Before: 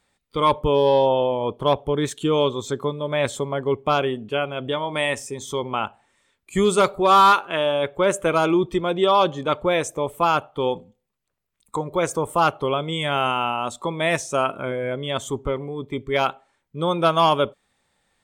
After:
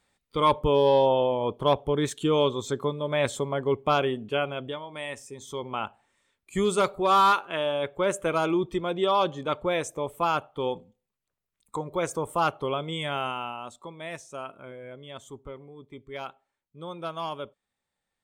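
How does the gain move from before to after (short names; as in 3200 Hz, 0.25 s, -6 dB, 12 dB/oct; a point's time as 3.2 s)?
4.52 s -3 dB
4.87 s -14 dB
5.83 s -6 dB
12.99 s -6 dB
13.96 s -16 dB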